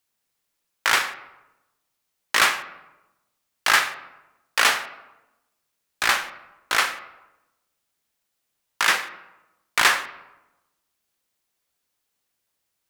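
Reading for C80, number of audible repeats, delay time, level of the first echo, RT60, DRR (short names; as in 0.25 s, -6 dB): 15.0 dB, none, none, none, 1.0 s, 10.0 dB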